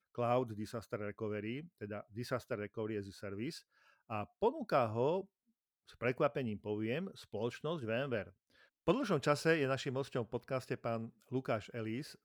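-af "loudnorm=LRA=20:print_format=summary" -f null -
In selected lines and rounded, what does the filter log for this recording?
Input Integrated:    -38.3 LUFS
Input True Peak:     -17.3 dBTP
Input LRA:             3.6 LU
Input Threshold:     -48.6 LUFS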